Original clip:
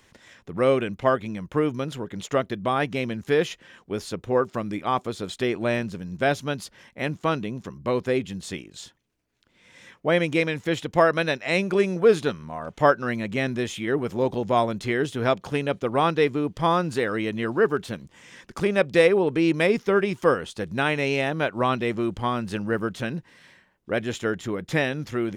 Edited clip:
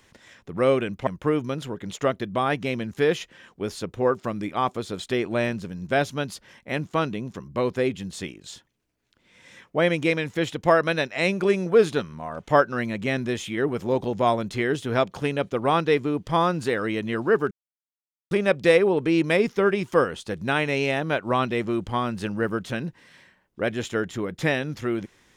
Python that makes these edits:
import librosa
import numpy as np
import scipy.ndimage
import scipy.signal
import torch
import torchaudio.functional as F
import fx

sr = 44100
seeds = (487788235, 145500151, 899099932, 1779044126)

y = fx.edit(x, sr, fx.cut(start_s=1.07, length_s=0.3),
    fx.silence(start_s=17.81, length_s=0.8), tone=tone)